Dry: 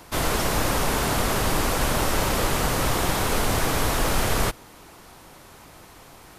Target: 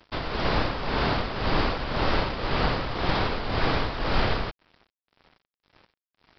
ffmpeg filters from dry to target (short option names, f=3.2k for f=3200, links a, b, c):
-af "tremolo=f=1.9:d=0.59,aresample=11025,aeval=exprs='sgn(val(0))*max(abs(val(0))-0.00596,0)':c=same,aresample=44100,volume=1dB"